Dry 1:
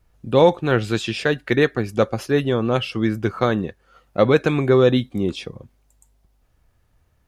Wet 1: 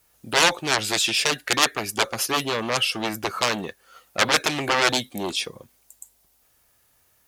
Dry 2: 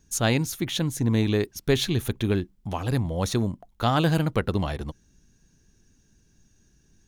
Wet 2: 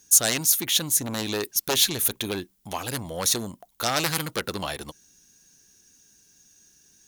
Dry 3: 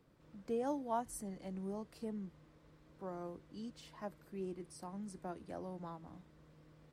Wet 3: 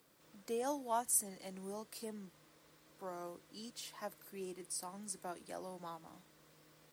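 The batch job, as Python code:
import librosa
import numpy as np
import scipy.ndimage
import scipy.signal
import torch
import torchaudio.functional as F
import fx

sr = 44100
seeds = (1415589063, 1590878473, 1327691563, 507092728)

y = fx.cheby_harmonics(x, sr, harmonics=(3, 5, 7), levels_db=(-8, -10, -6), full_scale_db=-2.0)
y = fx.riaa(y, sr, side='recording')
y = y * librosa.db_to_amplitude(-4.5)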